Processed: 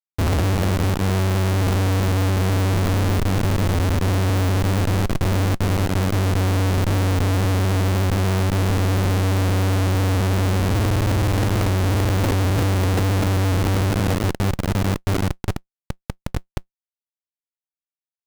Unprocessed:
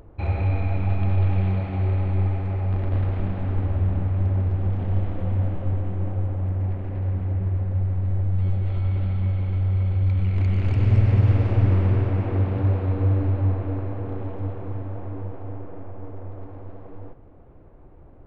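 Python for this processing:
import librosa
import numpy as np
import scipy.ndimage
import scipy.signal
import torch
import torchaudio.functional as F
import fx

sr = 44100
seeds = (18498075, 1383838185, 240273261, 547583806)

y = fx.schmitt(x, sr, flips_db=-34.0)
y = fx.quant_float(y, sr, bits=2)
y = F.gain(torch.from_numpy(y), 4.0).numpy()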